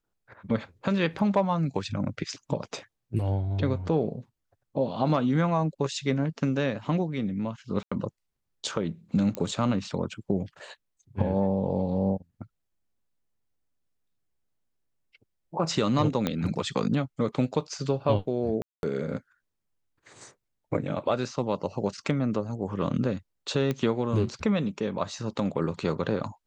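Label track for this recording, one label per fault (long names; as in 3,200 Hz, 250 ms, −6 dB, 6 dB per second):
7.830000	7.920000	drop-out 85 ms
9.350000	9.350000	click −17 dBFS
16.270000	16.270000	click −12 dBFS
18.620000	18.830000	drop-out 211 ms
23.710000	23.710000	click −16 dBFS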